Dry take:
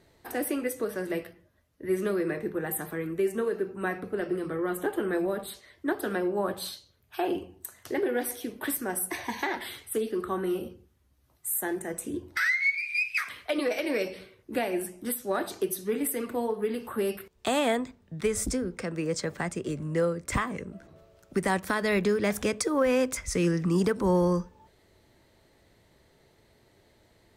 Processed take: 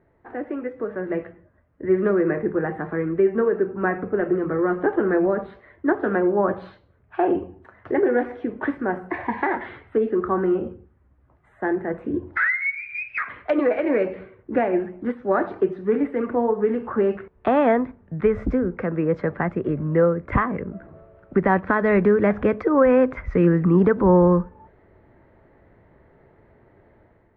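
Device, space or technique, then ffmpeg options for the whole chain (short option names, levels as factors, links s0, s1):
action camera in a waterproof case: -af "lowpass=f=1800:w=0.5412,lowpass=f=1800:w=1.3066,dynaudnorm=f=730:g=3:m=2.66" -ar 32000 -c:a aac -b:a 64k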